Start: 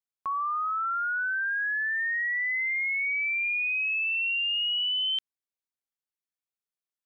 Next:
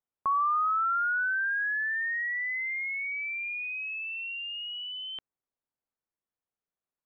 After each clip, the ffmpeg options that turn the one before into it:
-af "lowpass=1.2k,volume=6dB"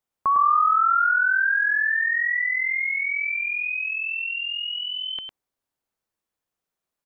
-af "aecho=1:1:104:0.596,volume=6.5dB"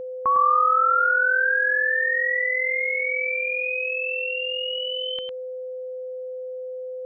-af "aeval=exprs='val(0)+0.0316*sin(2*PI*510*n/s)':c=same"

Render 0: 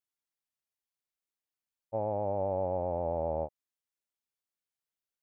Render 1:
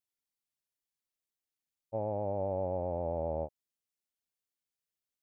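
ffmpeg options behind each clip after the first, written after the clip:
-af "equalizer=f=1.2k:t=o:w=1.8:g=-5.5"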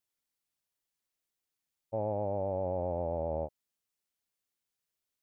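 -af "alimiter=level_in=3dB:limit=-24dB:level=0:latency=1:release=69,volume=-3dB,volume=3.5dB"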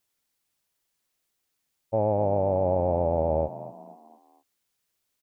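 -filter_complex "[0:a]asplit=5[a][b][c][d][e];[b]adelay=235,afreqshift=50,volume=-14.5dB[f];[c]adelay=470,afreqshift=100,volume=-21.8dB[g];[d]adelay=705,afreqshift=150,volume=-29.2dB[h];[e]adelay=940,afreqshift=200,volume=-36.5dB[i];[a][f][g][h][i]amix=inputs=5:normalize=0,volume=9dB"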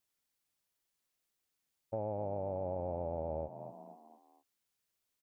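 -af "acompressor=threshold=-33dB:ratio=2,volume=-6.5dB"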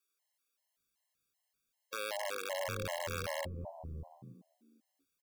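-filter_complex "[0:a]aeval=exprs='(mod(26.6*val(0)+1,2)-1)/26.6':c=same,acrossover=split=320[a][b];[a]adelay=620[c];[c][b]amix=inputs=2:normalize=0,afftfilt=real='re*gt(sin(2*PI*2.6*pts/sr)*(1-2*mod(floor(b*sr/1024/550),2)),0)':imag='im*gt(sin(2*PI*2.6*pts/sr)*(1-2*mod(floor(b*sr/1024/550),2)),0)':win_size=1024:overlap=0.75,volume=3.5dB"

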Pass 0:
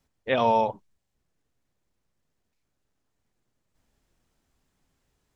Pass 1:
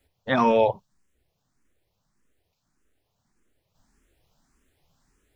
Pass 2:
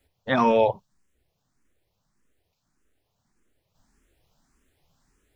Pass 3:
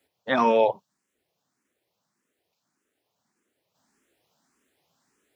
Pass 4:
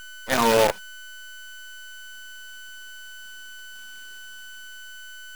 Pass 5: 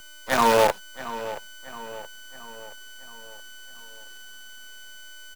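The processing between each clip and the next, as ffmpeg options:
-filter_complex "[0:a]asplit=2[a][b];[b]afreqshift=1.7[c];[a][c]amix=inputs=2:normalize=1,volume=8dB"
-af anull
-af "highpass=230"
-af "dynaudnorm=f=270:g=9:m=12dB,aeval=exprs='val(0)+0.0141*sin(2*PI*1500*n/s)':c=same,acrusher=bits=4:dc=4:mix=0:aa=0.000001"
-filter_complex "[0:a]equalizer=f=1k:w=0.91:g=5.5,acrossover=split=310|1100|2400[a][b][c][d];[c]aeval=exprs='val(0)*gte(abs(val(0)),0.01)':c=same[e];[a][b][e][d]amix=inputs=4:normalize=0,asplit=2[f][g];[g]adelay=674,lowpass=f=3.5k:p=1,volume=-14dB,asplit=2[h][i];[i]adelay=674,lowpass=f=3.5k:p=1,volume=0.52,asplit=2[j][k];[k]adelay=674,lowpass=f=3.5k:p=1,volume=0.52,asplit=2[l][m];[m]adelay=674,lowpass=f=3.5k:p=1,volume=0.52,asplit=2[n][o];[o]adelay=674,lowpass=f=3.5k:p=1,volume=0.52[p];[f][h][j][l][n][p]amix=inputs=6:normalize=0,volume=-2.5dB"

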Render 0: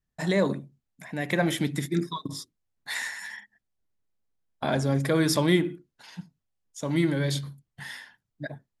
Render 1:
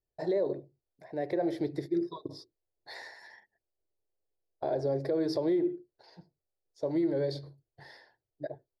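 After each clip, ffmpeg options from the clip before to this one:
-af "firequalizer=gain_entry='entry(110,0);entry(220,-12);entry(350,12);entry(630,10);entry(1200,-9);entry(1800,-6);entry(3000,-17);entry(4500,3);entry(7000,-20);entry(12000,-18)':delay=0.05:min_phase=1,alimiter=limit=-14dB:level=0:latency=1:release=114,volume=-7.5dB"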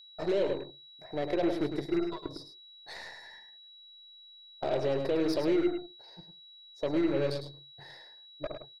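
-af "aeval=exprs='0.0891*(cos(1*acos(clip(val(0)/0.0891,-1,1)))-cos(1*PI/2))+0.00794*(cos(8*acos(clip(val(0)/0.0891,-1,1)))-cos(8*PI/2))':c=same,aecho=1:1:105:0.398,aeval=exprs='val(0)+0.00282*sin(2*PI*3900*n/s)':c=same"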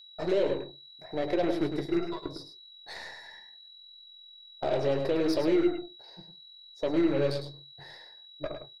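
-af "flanger=delay=9:depth=7.3:regen=-52:speed=0.74:shape=triangular,volume=6dB"

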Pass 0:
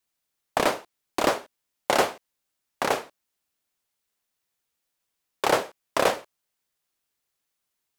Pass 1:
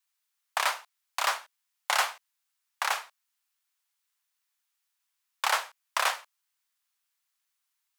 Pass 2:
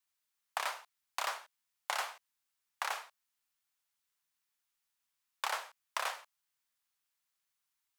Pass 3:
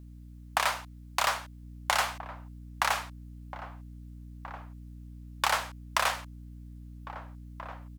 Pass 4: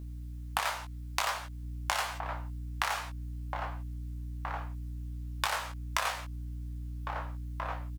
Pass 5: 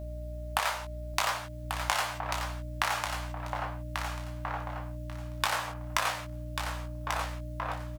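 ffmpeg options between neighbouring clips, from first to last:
-af "highpass=f=920:w=0.5412,highpass=f=920:w=1.3066"
-af "lowshelf=f=420:g=9,acompressor=threshold=-28dB:ratio=4,volume=-4.5dB"
-filter_complex "[0:a]aeval=exprs='val(0)+0.00178*(sin(2*PI*60*n/s)+sin(2*PI*2*60*n/s)/2+sin(2*PI*3*60*n/s)/3+sin(2*PI*4*60*n/s)/4+sin(2*PI*5*60*n/s)/5)':c=same,asplit=2[a][b];[b]adelay=1633,volume=-11dB,highshelf=f=4k:g=-36.7[c];[a][c]amix=inputs=2:normalize=0,volume=9dB"
-filter_complex "[0:a]acompressor=threshold=-34dB:ratio=5,asplit=2[a][b];[b]adelay=19,volume=-5dB[c];[a][c]amix=inputs=2:normalize=0,volume=4.5dB"
-af "aeval=exprs='val(0)+0.00501*sin(2*PI*610*n/s)':c=same,aecho=1:1:1140|2280|3420:0.473|0.0899|0.0171,volume=2dB"

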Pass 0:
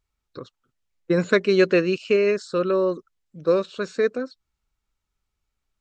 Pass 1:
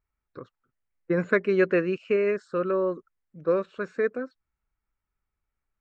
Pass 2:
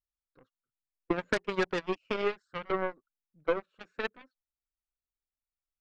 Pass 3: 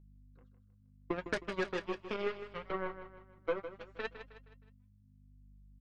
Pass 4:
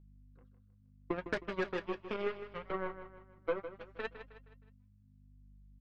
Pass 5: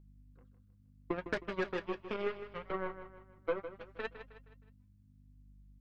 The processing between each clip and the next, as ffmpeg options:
-af "highshelf=f=2.8k:t=q:w=1.5:g=-12,volume=-4.5dB"
-af "flanger=delay=0.6:depth=3.2:regen=47:speed=1.2:shape=sinusoidal,aeval=exprs='0.224*(cos(1*acos(clip(val(0)/0.224,-1,1)))-cos(1*PI/2))+0.0631*(cos(2*acos(clip(val(0)/0.224,-1,1)))-cos(2*PI/2))+0.00794*(cos(4*acos(clip(val(0)/0.224,-1,1)))-cos(4*PI/2))+0.00398*(cos(6*acos(clip(val(0)/0.224,-1,1)))-cos(6*PI/2))+0.0355*(cos(7*acos(clip(val(0)/0.224,-1,1)))-cos(7*PI/2))':c=same,acompressor=threshold=-29dB:ratio=5,volume=4.5dB"
-filter_complex "[0:a]aeval=exprs='val(0)+0.00251*(sin(2*PI*50*n/s)+sin(2*PI*2*50*n/s)/2+sin(2*PI*3*50*n/s)/3+sin(2*PI*4*50*n/s)/4+sin(2*PI*5*50*n/s)/5)':c=same,flanger=delay=5.9:depth=4.4:regen=-54:speed=0.71:shape=triangular,asplit=2[a][b];[b]aecho=0:1:157|314|471|628:0.282|0.121|0.0521|0.0224[c];[a][c]amix=inputs=2:normalize=0,volume=-2dB"
-af "adynamicsmooth=sensitivity=1.5:basefreq=4.6k"
-af "aeval=exprs='val(0)+0.000251*(sin(2*PI*60*n/s)+sin(2*PI*2*60*n/s)/2+sin(2*PI*3*60*n/s)/3+sin(2*PI*4*60*n/s)/4+sin(2*PI*5*60*n/s)/5)':c=same"

